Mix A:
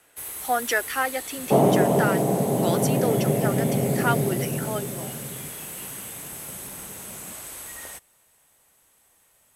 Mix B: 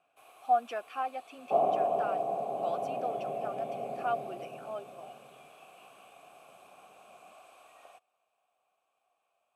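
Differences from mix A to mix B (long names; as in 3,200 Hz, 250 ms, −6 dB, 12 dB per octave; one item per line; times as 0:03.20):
speech: remove high-pass filter 320 Hz 24 dB per octave
master: add formant filter a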